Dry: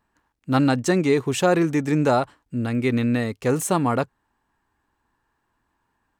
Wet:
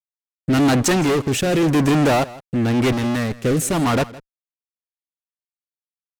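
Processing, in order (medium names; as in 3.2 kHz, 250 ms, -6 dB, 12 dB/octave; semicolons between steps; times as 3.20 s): fuzz box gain 29 dB, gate -38 dBFS; 2.92–3.43 s: valve stage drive 18 dB, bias 0.65; rotary cabinet horn 0.9 Hz; delay 162 ms -19.5 dB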